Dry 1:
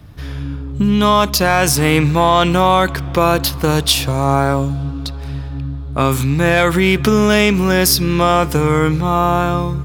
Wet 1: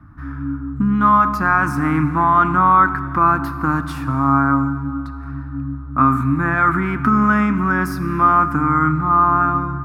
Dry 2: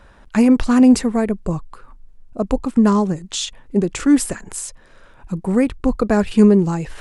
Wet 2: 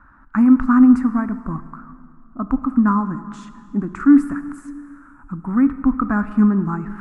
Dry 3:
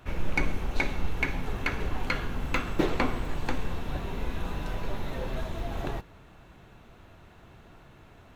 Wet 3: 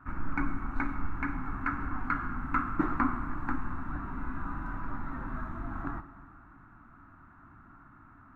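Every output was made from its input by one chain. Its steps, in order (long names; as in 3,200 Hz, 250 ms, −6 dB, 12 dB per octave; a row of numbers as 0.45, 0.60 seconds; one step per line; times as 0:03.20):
drawn EQ curve 190 Hz 0 dB, 280 Hz +9 dB, 460 Hz −18 dB, 1,300 Hz +13 dB, 3,200 Hz −22 dB, 5,000 Hz −21 dB, 8,500 Hz −19 dB
dense smooth reverb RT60 2.2 s, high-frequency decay 0.85×, DRR 11.5 dB
level −5 dB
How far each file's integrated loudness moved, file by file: −2.0, 0.0, −2.5 LU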